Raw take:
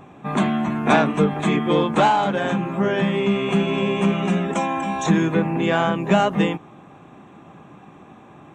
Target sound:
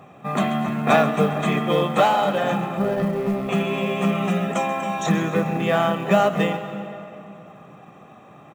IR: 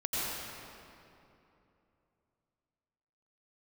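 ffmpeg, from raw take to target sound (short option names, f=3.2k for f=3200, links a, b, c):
-filter_complex "[0:a]highpass=130,asettb=1/sr,asplit=3[a][b][c];[a]atrim=end=2.784[d];[b]atrim=start=2.78:end=3.49,asetpts=PTS-STARTPTS,afade=t=in:d=0.004:c=qsin,afade=t=out:st=0.706:d=0.004:c=qsin,adynamicsmooth=sensitivity=0.5:basefreq=520[e];[c]atrim=start=3.486[f];[d][e]acrossfade=d=0.004:c1=hsin:c2=qsin[g];[g][f]acrossfade=d=0.004:c1=qsin:c2=hsin,highshelf=f=7.6k:g=-3.5,aecho=1:1:1.6:0.49,acrusher=bits=8:mode=log:mix=0:aa=0.000001,aecho=1:1:133:0.178,asplit=2[h][i];[1:a]atrim=start_sample=2205,adelay=141[j];[i][j]afir=irnorm=-1:irlink=0,volume=-19dB[k];[h][k]amix=inputs=2:normalize=0,volume=-1dB"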